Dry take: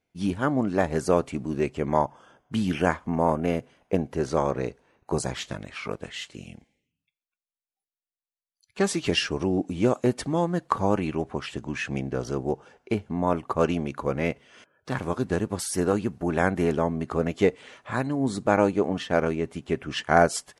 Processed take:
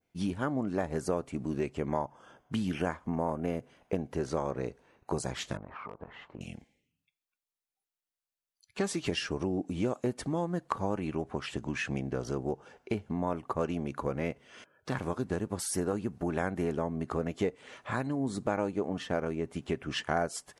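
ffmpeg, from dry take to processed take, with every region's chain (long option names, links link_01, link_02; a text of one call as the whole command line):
ffmpeg -i in.wav -filter_complex "[0:a]asettb=1/sr,asplit=3[link_01][link_02][link_03];[link_01]atrim=end=5.574[link_04];[link_02]atrim=start=5.57:end=6.41,asetpts=PTS-STARTPTS,afade=type=in:duration=0.004:curve=qsin,afade=type=out:start_time=0.836:duration=0.004:curve=qsin,lowpass=frequency=1000:width_type=q:width=3.5,asoftclip=type=hard:threshold=-16dB,acompressor=threshold=-38dB:ratio=16:attack=3.2:release=140:knee=1:detection=peak[link_05];[link_03]atrim=start=6.406[link_06];[link_04][link_05]acrossfade=duration=0.004:curve1=hsin:curve2=qsin[link_07];[link_07][link_06]acrossfade=duration=0.004:curve1=qsin:curve2=hsin,adynamicequalizer=threshold=0.00631:dfrequency=3300:dqfactor=0.7:tfrequency=3300:tqfactor=0.7:attack=5:release=100:ratio=0.375:range=2.5:mode=cutabove:tftype=bell,acompressor=threshold=-31dB:ratio=2.5" out.wav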